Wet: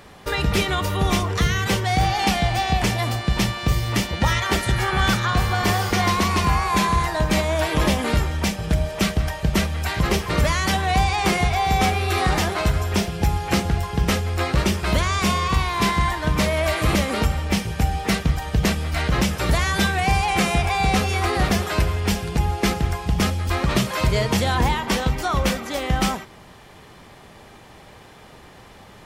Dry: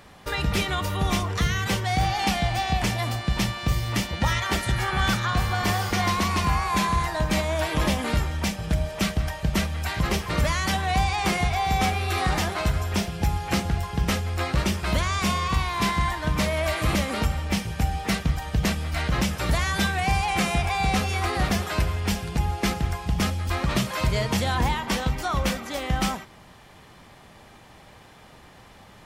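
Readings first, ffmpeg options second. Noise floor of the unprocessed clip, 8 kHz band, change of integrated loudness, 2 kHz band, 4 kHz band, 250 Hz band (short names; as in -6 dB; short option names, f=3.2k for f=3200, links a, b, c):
-50 dBFS, +3.5 dB, +3.5 dB, +3.5 dB, +3.5 dB, +4.0 dB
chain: -af "equalizer=f=410:t=o:w=0.53:g=4,volume=3.5dB"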